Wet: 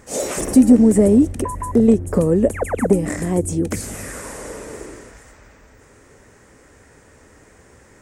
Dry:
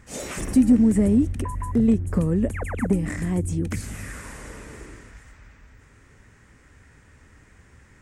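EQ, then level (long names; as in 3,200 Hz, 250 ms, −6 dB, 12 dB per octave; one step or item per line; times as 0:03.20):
bass and treble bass −1 dB, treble +11 dB
parametric band 530 Hz +14 dB 2.2 octaves
−1.0 dB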